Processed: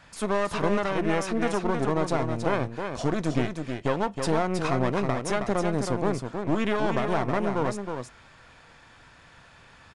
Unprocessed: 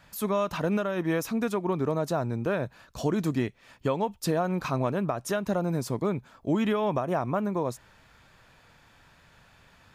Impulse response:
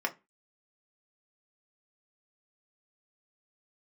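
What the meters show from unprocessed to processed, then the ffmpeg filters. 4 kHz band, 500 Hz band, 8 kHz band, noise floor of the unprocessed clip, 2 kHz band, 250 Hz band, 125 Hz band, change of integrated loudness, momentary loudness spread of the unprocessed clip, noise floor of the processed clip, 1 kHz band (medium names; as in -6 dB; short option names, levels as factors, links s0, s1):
+3.5 dB, +1.5 dB, +2.0 dB, -59 dBFS, +5.0 dB, +1.0 dB, +1.0 dB, +1.5 dB, 4 LU, -53 dBFS, +3.5 dB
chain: -filter_complex "[0:a]aeval=exprs='clip(val(0),-1,0.0119)':c=same,aecho=1:1:319:0.501,asplit=2[s0][s1];[1:a]atrim=start_sample=2205[s2];[s1][s2]afir=irnorm=-1:irlink=0,volume=0.168[s3];[s0][s3]amix=inputs=2:normalize=0,aresample=22050,aresample=44100,volume=1.33"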